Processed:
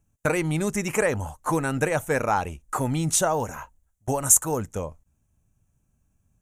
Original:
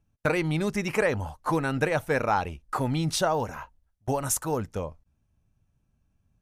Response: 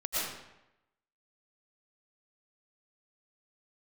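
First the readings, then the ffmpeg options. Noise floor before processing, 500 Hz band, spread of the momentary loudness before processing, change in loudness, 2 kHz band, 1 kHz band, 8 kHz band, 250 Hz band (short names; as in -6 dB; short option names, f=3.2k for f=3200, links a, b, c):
-73 dBFS, +1.5 dB, 10 LU, +3.5 dB, +1.0 dB, +1.5 dB, +11.0 dB, +1.5 dB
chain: -af "highshelf=f=5.8k:t=q:w=3:g=6.5,volume=1.5dB"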